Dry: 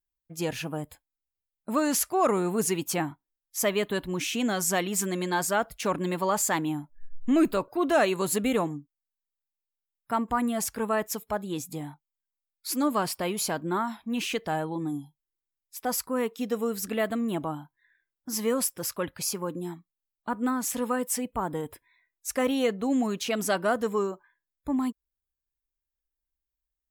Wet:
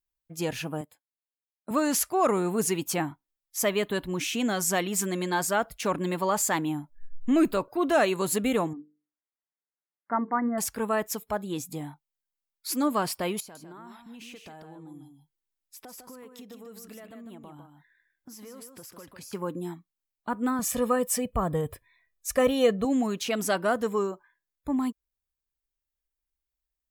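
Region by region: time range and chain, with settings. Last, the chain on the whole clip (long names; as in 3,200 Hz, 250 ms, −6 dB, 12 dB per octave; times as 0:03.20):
0:00.81–0:01.71: high-pass filter 180 Hz + expander for the loud parts, over −51 dBFS
0:08.73–0:10.58: linear-phase brick-wall band-pass 170–2,200 Hz + mains-hum notches 50/100/150/200/250/300/350/400/450/500 Hz
0:13.40–0:19.33: downward compressor 8 to 1, threshold −43 dBFS + single-tap delay 151 ms −6.5 dB
0:20.59–0:22.85: low-shelf EQ 280 Hz +9.5 dB + comb filter 1.7 ms, depth 53%
whole clip: no processing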